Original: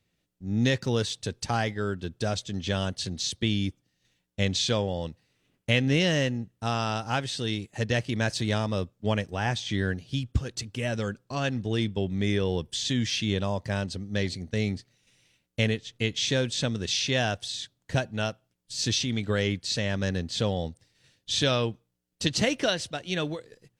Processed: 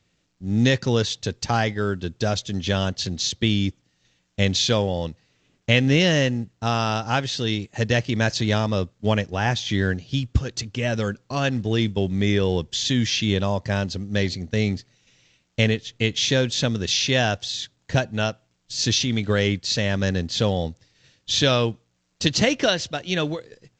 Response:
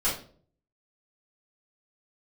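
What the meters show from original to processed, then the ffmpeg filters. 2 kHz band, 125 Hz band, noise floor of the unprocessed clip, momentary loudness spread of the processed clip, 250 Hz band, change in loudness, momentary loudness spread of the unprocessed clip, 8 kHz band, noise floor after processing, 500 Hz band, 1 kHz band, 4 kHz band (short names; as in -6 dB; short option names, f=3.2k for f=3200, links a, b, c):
+5.5 dB, +5.5 dB, -77 dBFS, 7 LU, +5.5 dB, +5.5 dB, 7 LU, +5.0 dB, -70 dBFS, +5.5 dB, +5.5 dB, +5.5 dB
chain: -af "volume=5.5dB" -ar 16000 -c:a pcm_alaw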